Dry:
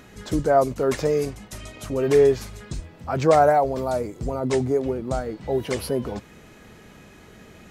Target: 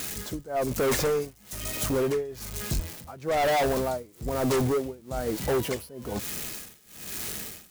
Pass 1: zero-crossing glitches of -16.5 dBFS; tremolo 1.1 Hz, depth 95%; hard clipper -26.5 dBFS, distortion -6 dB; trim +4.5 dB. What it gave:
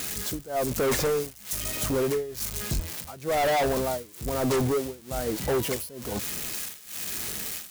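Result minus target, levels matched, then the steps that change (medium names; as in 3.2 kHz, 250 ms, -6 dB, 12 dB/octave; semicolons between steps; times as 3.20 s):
zero-crossing glitches: distortion +11 dB
change: zero-crossing glitches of -27.5 dBFS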